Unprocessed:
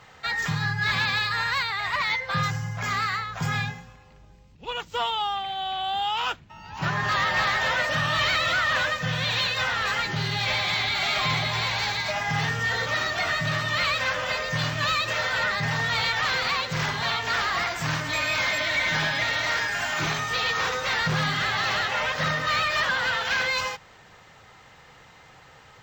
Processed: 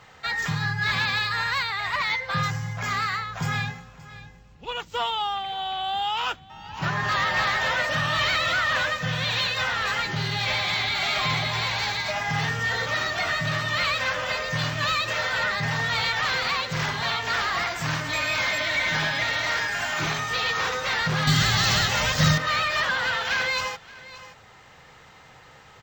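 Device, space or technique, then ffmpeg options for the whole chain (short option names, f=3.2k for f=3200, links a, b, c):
ducked delay: -filter_complex "[0:a]asplit=3[a][b][c];[b]adelay=574,volume=-5.5dB[d];[c]apad=whole_len=1164225[e];[d][e]sidechaincompress=threshold=-44dB:ratio=8:attack=32:release=828[f];[a][f]amix=inputs=2:normalize=0,asettb=1/sr,asplit=3[g][h][i];[g]atrim=end=21.274[j];[h]atrim=start=21.27:end=22.38,asetpts=PTS-STARTPTS,afade=t=in:d=0.004:c=qsin,afade=t=out:st=1.106:d=0.004:c=qsin,bass=f=250:g=14,treble=f=4k:g=15[k];[i]atrim=start=22.376[l];[j][k]acrossfade=d=0.004:c1=hsin:c2=qsin[m];[m][l]acrossfade=d=0.004:c1=qsin:c2=hsin"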